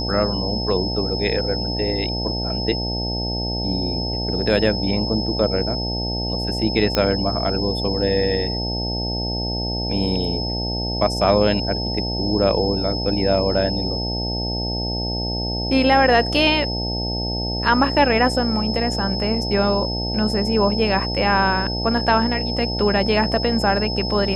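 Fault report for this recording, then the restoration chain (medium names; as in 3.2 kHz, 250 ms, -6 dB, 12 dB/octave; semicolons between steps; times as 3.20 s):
buzz 60 Hz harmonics 15 -26 dBFS
whine 5.2 kHz -26 dBFS
6.95 s: pop -5 dBFS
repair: de-click; de-hum 60 Hz, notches 15; band-stop 5.2 kHz, Q 30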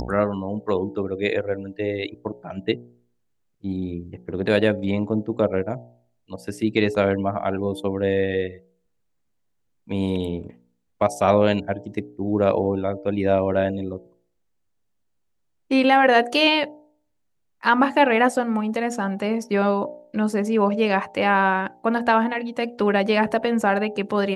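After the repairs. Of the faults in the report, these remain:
nothing left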